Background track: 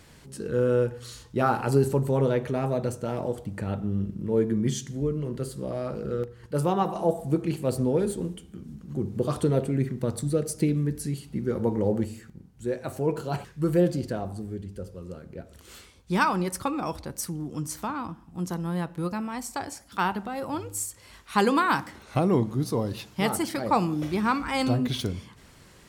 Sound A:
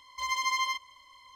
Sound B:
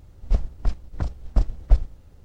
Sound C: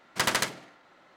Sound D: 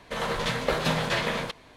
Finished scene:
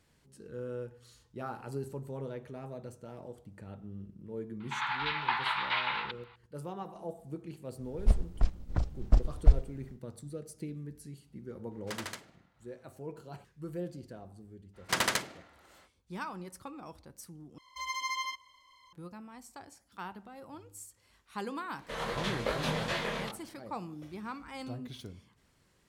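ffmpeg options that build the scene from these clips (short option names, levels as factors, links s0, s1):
-filter_complex "[4:a]asplit=2[s0][s1];[3:a]asplit=2[s2][s3];[0:a]volume=0.15[s4];[s0]highpass=f=420:t=q:w=0.5412,highpass=f=420:t=q:w=1.307,lowpass=f=3500:t=q:w=0.5176,lowpass=f=3500:t=q:w=0.7071,lowpass=f=3500:t=q:w=1.932,afreqshift=390[s5];[s1]flanger=delay=19.5:depth=7.1:speed=2.5[s6];[s4]asplit=2[s7][s8];[s7]atrim=end=17.584[s9];[1:a]atrim=end=1.35,asetpts=PTS-STARTPTS,volume=0.501[s10];[s8]atrim=start=18.926[s11];[s5]atrim=end=1.76,asetpts=PTS-STARTPTS,volume=0.668,afade=t=in:d=0.004:c=hsin,afade=t=out:st=1.756:d=0.004:c=hsin,adelay=4600[s12];[2:a]atrim=end=2.24,asetpts=PTS-STARTPTS,volume=0.668,afade=t=in:d=0.1,afade=t=out:st=2.14:d=0.1,adelay=7760[s13];[s2]atrim=end=1.16,asetpts=PTS-STARTPTS,volume=0.178,afade=t=in:d=0.004:c=hsin,afade=t=out:st=1.156:d=0.004:c=hsin,adelay=11710[s14];[s3]atrim=end=1.16,asetpts=PTS-STARTPTS,volume=0.708,afade=t=in:d=0.05,afade=t=out:st=1.11:d=0.05,adelay=14730[s15];[s6]atrim=end=1.76,asetpts=PTS-STARTPTS,volume=0.631,afade=t=in:d=0.004:c=hsin,afade=t=out:st=1.756:d=0.004:c=hsin,adelay=21780[s16];[s9][s10]acrossfade=d=0.004:c1=hsin:c2=hsin[s17];[s17][s11]acrossfade=d=0.004:c1=hsin:c2=hsin[s18];[s18][s12][s13][s14][s15][s16]amix=inputs=6:normalize=0"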